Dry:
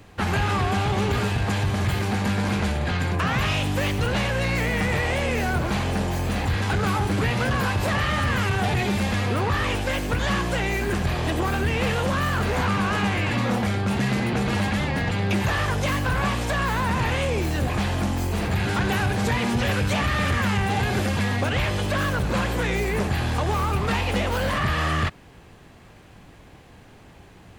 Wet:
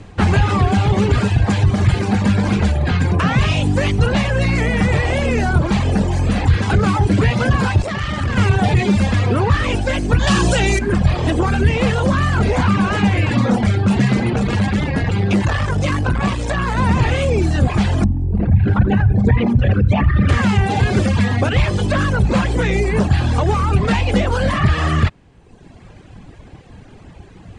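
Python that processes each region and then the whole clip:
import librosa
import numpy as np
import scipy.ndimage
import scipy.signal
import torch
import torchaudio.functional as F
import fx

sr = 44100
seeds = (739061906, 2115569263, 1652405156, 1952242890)

y = fx.chain(x, sr, fx.peak_eq(hz=11000.0, db=-5.5, octaves=0.26),
    fx.tube_stage(drive_db=23.0, bias=0.65), at=(7.82, 8.37))
y = fx.chain(y, sr, fx.high_shelf(hz=3500.0, db=11.0),
    fx.notch(hz=2100.0, q=6.3),
    fx.env_flatten(amount_pct=70), at=(10.27, 10.79))
y = fx.chain(y, sr, fx.echo_single(ms=232, db=-14.0),
    fx.transformer_sat(knee_hz=220.0), at=(14.3, 16.78))
y = fx.chain(y, sr, fx.envelope_sharpen(power=2.0),
    fx.echo_single(ms=84, db=-10.0), at=(18.04, 20.29))
y = fx.dereverb_blind(y, sr, rt60_s=1.1)
y = scipy.signal.sosfilt(scipy.signal.butter(8, 9500.0, 'lowpass', fs=sr, output='sos'), y)
y = fx.low_shelf(y, sr, hz=420.0, db=8.0)
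y = F.gain(torch.from_numpy(y), 5.0).numpy()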